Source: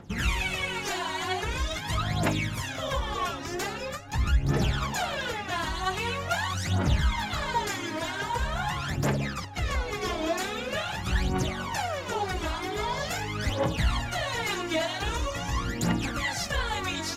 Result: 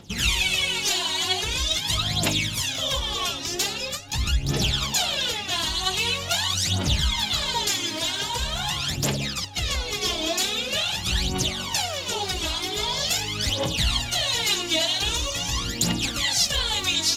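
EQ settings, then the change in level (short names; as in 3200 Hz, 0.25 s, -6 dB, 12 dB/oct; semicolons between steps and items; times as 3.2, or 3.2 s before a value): resonant high shelf 2400 Hz +11 dB, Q 1.5; 0.0 dB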